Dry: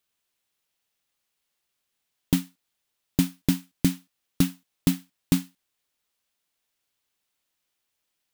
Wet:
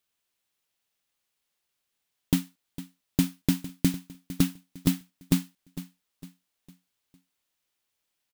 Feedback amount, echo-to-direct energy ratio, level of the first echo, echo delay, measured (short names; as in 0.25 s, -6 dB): 42%, -14.5 dB, -15.5 dB, 0.455 s